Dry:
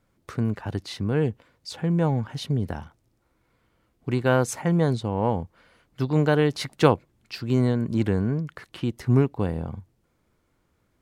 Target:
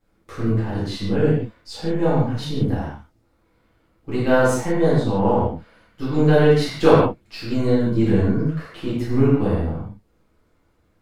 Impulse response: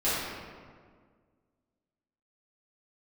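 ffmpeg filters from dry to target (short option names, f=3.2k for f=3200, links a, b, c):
-filter_complex "[0:a]aeval=exprs='if(lt(val(0),0),0.708*val(0),val(0))':c=same[a];[1:a]atrim=start_sample=2205,afade=t=out:st=0.24:d=0.01,atrim=end_sample=11025[b];[a][b]afir=irnorm=-1:irlink=0,volume=-5.5dB"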